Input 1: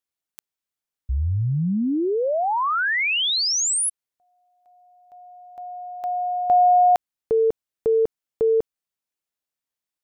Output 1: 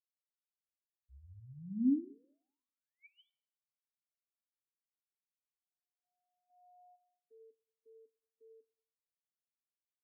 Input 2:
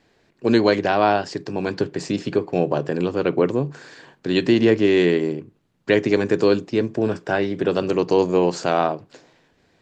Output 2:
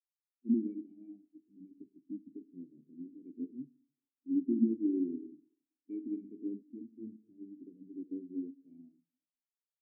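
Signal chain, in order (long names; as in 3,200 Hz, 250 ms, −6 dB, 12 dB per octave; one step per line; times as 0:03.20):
formant resonators in series i
four-comb reverb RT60 1.6 s, combs from 32 ms, DRR 6 dB
every bin expanded away from the loudest bin 2.5 to 1
level −5 dB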